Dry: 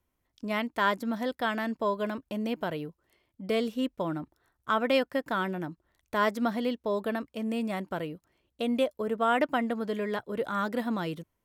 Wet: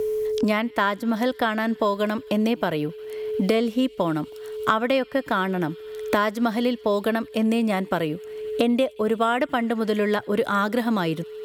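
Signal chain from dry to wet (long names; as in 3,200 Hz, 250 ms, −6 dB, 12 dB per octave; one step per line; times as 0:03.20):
delay with a high-pass on its return 88 ms, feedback 77%, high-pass 2,800 Hz, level −23 dB
steady tone 430 Hz −51 dBFS
multiband upward and downward compressor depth 100%
level +6.5 dB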